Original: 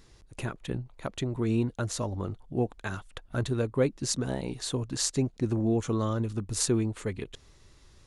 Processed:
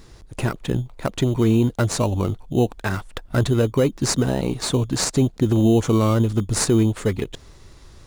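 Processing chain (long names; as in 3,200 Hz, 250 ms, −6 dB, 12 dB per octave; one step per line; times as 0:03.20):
in parallel at −6.5 dB: decimation without filtering 13×
on the sum: boost into a limiter +16 dB
level −8 dB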